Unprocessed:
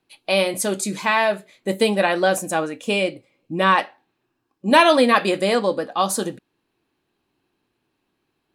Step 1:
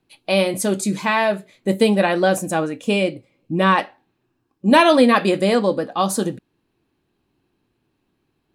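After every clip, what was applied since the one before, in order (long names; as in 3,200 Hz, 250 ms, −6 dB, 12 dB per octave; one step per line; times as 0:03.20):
low-shelf EQ 300 Hz +10 dB
level −1 dB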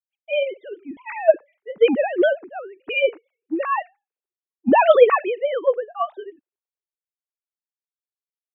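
three sine waves on the formant tracks
multiband upward and downward expander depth 100%
level −4.5 dB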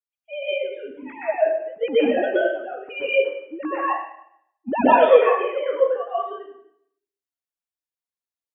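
dense smooth reverb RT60 0.71 s, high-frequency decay 0.9×, pre-delay 110 ms, DRR −9.5 dB
level −10.5 dB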